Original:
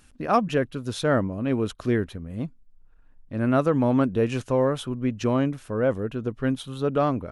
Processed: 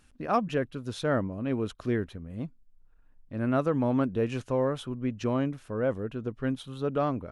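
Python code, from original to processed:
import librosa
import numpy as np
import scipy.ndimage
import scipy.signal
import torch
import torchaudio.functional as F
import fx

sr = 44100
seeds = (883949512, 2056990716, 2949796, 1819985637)

y = fx.high_shelf(x, sr, hz=7300.0, db=-5.5)
y = y * librosa.db_to_amplitude(-5.0)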